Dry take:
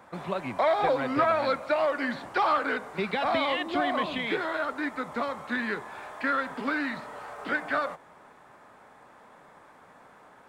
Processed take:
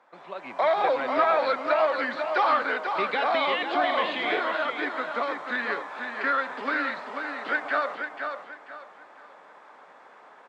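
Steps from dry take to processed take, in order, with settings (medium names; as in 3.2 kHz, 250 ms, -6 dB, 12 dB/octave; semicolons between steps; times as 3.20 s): high-pass 410 Hz 12 dB/octave; distance through air 150 m; feedback delay 489 ms, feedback 30%, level -6.5 dB; level rider gain up to 10 dB; treble shelf 5.3 kHz +8 dB; 3.87–4.41 s: flutter echo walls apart 7.2 m, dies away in 0.3 s; trim -7 dB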